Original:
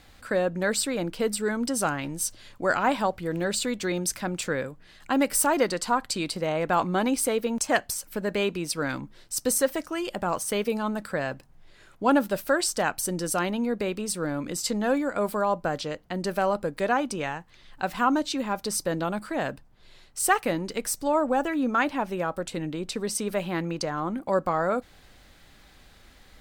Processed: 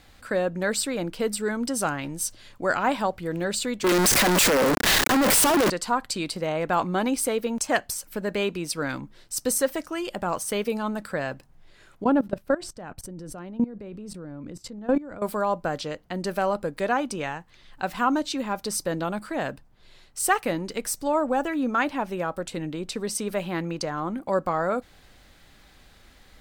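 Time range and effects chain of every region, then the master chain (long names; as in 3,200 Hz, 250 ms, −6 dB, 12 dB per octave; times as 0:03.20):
0:03.84–0:05.70: sign of each sample alone + high-pass filter 230 Hz 24 dB per octave + leveller curve on the samples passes 5
0:12.04–0:15.22: high-pass filter 55 Hz 6 dB per octave + spectral tilt −3.5 dB per octave + output level in coarse steps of 19 dB
whole clip: no processing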